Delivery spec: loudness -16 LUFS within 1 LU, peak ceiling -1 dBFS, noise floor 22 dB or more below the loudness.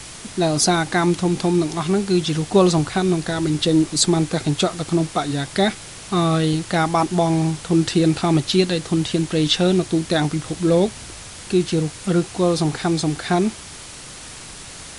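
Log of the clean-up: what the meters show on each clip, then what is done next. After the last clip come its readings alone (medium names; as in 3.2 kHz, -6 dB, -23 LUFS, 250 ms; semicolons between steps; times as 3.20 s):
noise floor -37 dBFS; noise floor target -42 dBFS; loudness -19.5 LUFS; peak level -3.5 dBFS; loudness target -16.0 LUFS
-> noise reduction 6 dB, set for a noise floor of -37 dBFS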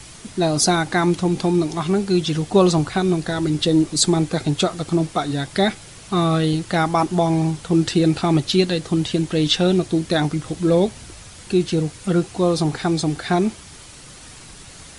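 noise floor -41 dBFS; noise floor target -42 dBFS
-> noise reduction 6 dB, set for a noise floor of -41 dBFS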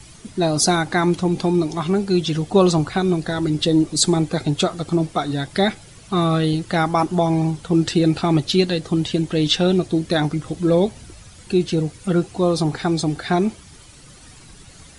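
noise floor -45 dBFS; loudness -20.0 LUFS; peak level -3.5 dBFS; loudness target -16.0 LUFS
-> trim +4 dB; peak limiter -1 dBFS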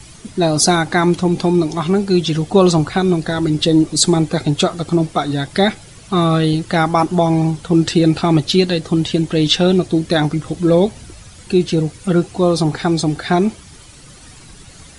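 loudness -16.0 LUFS; peak level -1.0 dBFS; noise floor -41 dBFS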